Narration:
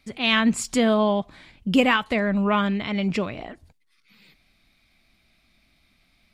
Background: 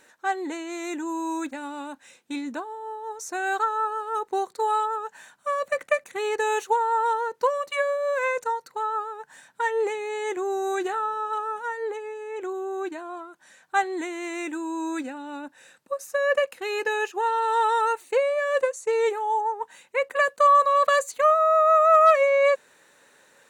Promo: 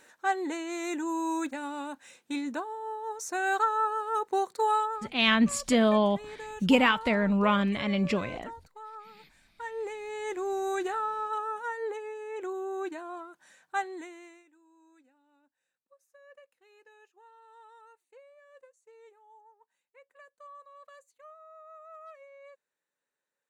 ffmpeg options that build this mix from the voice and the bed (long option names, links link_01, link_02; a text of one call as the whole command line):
ffmpeg -i stem1.wav -i stem2.wav -filter_complex "[0:a]adelay=4950,volume=-3dB[link_01];[1:a]volume=11.5dB,afade=type=out:start_time=4.71:duration=0.47:silence=0.16788,afade=type=in:start_time=9.5:duration=1.03:silence=0.223872,afade=type=out:start_time=13.37:duration=1.07:silence=0.0375837[link_02];[link_01][link_02]amix=inputs=2:normalize=0" out.wav